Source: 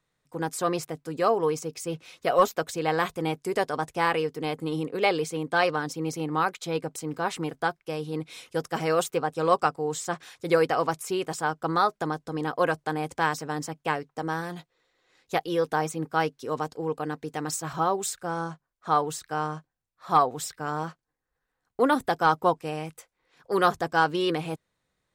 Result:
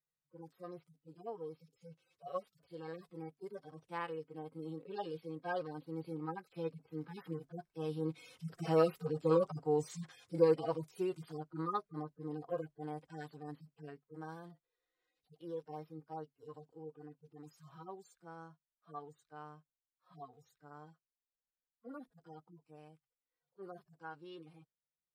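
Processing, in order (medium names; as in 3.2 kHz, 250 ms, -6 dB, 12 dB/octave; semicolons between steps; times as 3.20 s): harmonic-percussive separation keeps harmonic; Doppler pass-by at 9.22 s, 5 m/s, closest 5.2 m; trim -1.5 dB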